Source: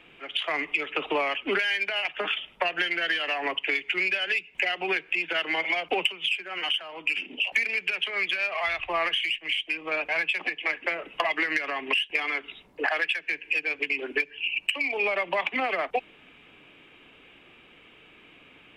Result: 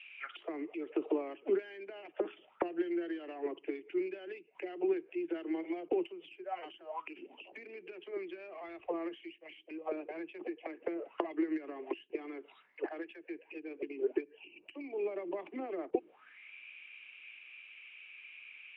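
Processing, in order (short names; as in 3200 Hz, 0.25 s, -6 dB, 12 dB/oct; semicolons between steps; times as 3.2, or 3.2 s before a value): auto-wah 340–2800 Hz, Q 7.7, down, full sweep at -26 dBFS; gain +7 dB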